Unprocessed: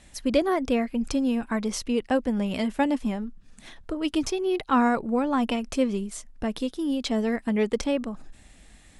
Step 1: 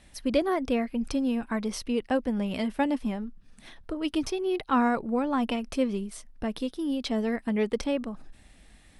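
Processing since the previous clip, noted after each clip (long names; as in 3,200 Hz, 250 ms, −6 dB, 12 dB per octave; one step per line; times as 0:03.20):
parametric band 7,100 Hz −8.5 dB 0.3 octaves
level −2.5 dB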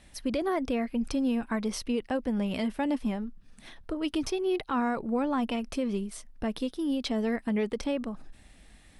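brickwall limiter −20.5 dBFS, peak gain reduction 8 dB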